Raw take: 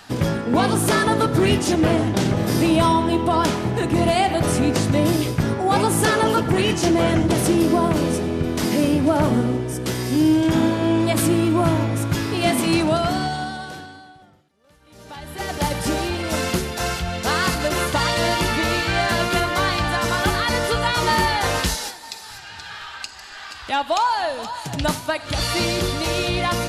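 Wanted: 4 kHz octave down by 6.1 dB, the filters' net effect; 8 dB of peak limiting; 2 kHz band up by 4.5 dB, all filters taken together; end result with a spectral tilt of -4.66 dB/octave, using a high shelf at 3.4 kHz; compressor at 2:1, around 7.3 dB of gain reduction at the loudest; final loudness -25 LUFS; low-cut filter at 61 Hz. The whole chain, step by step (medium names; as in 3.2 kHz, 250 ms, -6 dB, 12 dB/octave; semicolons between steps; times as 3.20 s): high-pass 61 Hz; peaking EQ 2 kHz +9 dB; treble shelf 3.4 kHz -5 dB; peaking EQ 4 kHz -8.5 dB; compression 2:1, threshold -27 dBFS; trim +4.5 dB; peak limiter -16.5 dBFS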